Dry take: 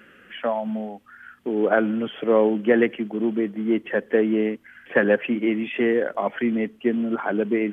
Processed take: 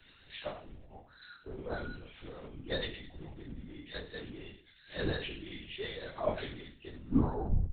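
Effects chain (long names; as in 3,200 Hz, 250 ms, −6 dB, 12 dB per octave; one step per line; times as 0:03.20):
turntable brake at the end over 0.69 s
low-shelf EQ 130 Hz +7 dB
hum removal 81.15 Hz, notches 33
in parallel at +1 dB: upward compression, threshold −20 dBFS
on the sum: brickwall limiter −7 dBFS, peak gain reduction 8 dB
stiff-string resonator 97 Hz, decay 0.6 s, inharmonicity 0.002
on a send: delay with a high-pass on its return 108 ms, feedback 70%, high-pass 2,300 Hz, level −12 dB
on the sum: bad sample-rate conversion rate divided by 8×, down none, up zero stuff
linear-prediction vocoder at 8 kHz whisper
multiband upward and downward expander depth 70%
level −7.5 dB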